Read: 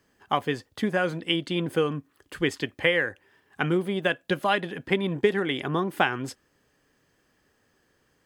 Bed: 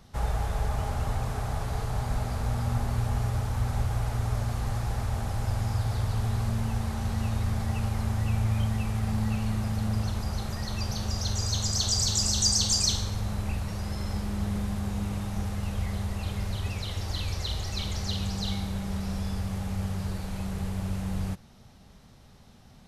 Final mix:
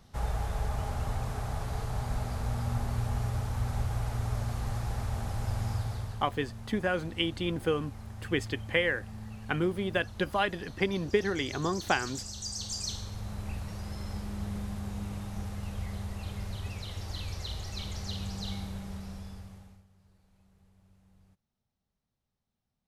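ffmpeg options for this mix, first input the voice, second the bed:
-filter_complex "[0:a]adelay=5900,volume=0.596[s0];[1:a]volume=1.88,afade=t=out:st=5.71:d=0.55:silence=0.266073,afade=t=in:st=12.4:d=1.18:silence=0.354813,afade=t=out:st=18.62:d=1.22:silence=0.0501187[s1];[s0][s1]amix=inputs=2:normalize=0"

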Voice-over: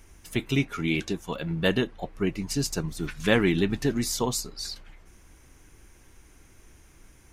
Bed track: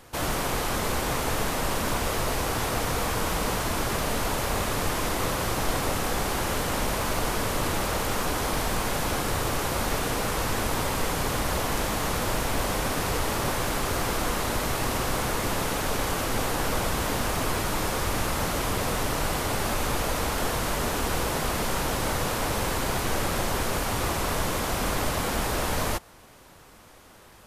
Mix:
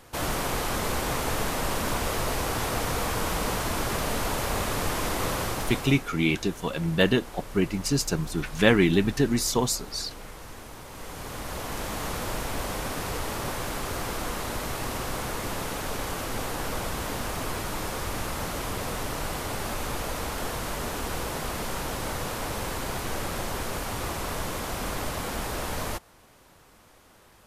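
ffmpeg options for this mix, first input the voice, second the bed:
-filter_complex "[0:a]adelay=5350,volume=1.33[s0];[1:a]volume=3.55,afade=t=out:st=5.38:d=0.69:silence=0.16788,afade=t=in:st=10.86:d=1.15:silence=0.251189[s1];[s0][s1]amix=inputs=2:normalize=0"

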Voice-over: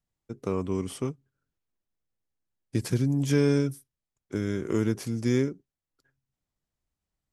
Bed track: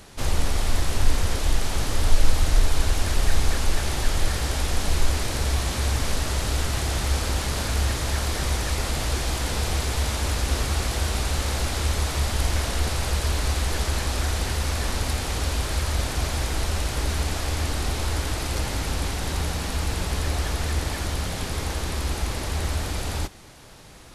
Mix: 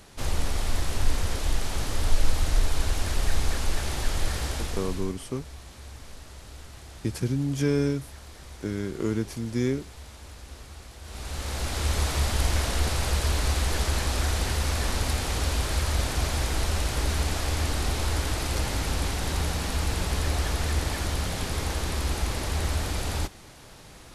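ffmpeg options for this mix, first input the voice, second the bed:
-filter_complex "[0:a]adelay=4300,volume=0.841[s0];[1:a]volume=5.31,afade=t=out:st=4.43:d=0.72:silence=0.16788,afade=t=in:st=11.02:d=0.99:silence=0.11885[s1];[s0][s1]amix=inputs=2:normalize=0"

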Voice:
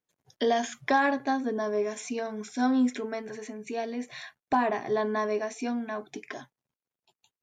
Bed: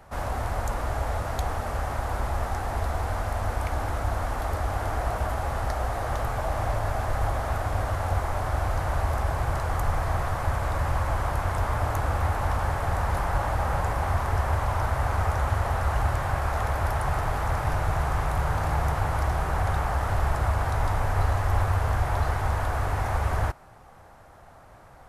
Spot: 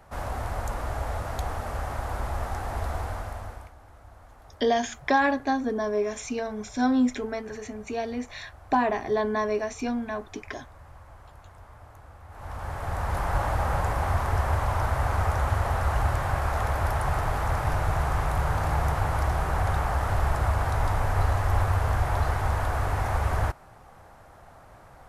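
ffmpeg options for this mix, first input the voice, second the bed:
-filter_complex "[0:a]adelay=4200,volume=1.26[s0];[1:a]volume=10,afade=t=out:st=2.96:d=0.77:silence=0.1,afade=t=in:st=12.28:d=1.1:silence=0.0749894[s1];[s0][s1]amix=inputs=2:normalize=0"

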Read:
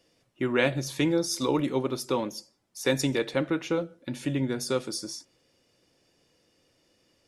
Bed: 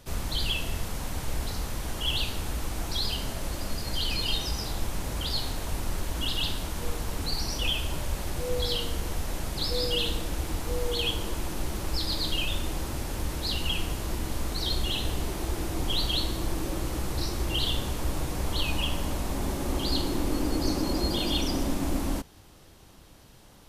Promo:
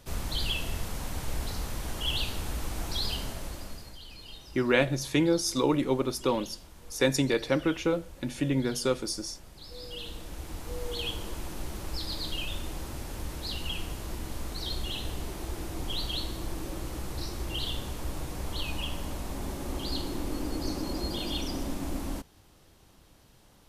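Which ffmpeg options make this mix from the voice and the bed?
-filter_complex "[0:a]adelay=4150,volume=1.06[s0];[1:a]volume=3.35,afade=t=out:st=3.14:d=0.84:silence=0.158489,afade=t=in:st=9.62:d=1.39:silence=0.237137[s1];[s0][s1]amix=inputs=2:normalize=0"

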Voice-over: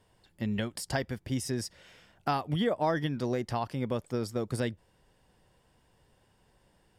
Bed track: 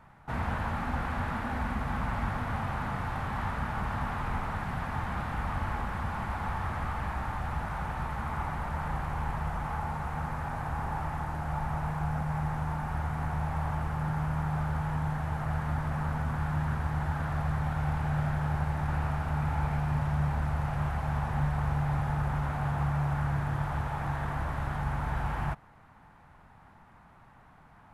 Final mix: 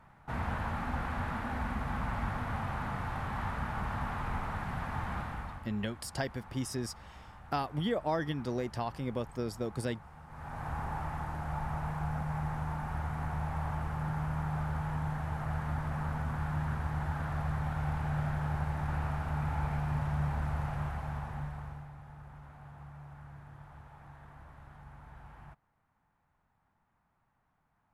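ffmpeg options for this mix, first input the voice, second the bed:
-filter_complex "[0:a]adelay=5250,volume=0.668[s0];[1:a]volume=3.76,afade=t=out:st=5.15:d=0.52:silence=0.177828,afade=t=in:st=10.27:d=0.43:silence=0.188365,afade=t=out:st=20.59:d=1.33:silence=0.149624[s1];[s0][s1]amix=inputs=2:normalize=0"

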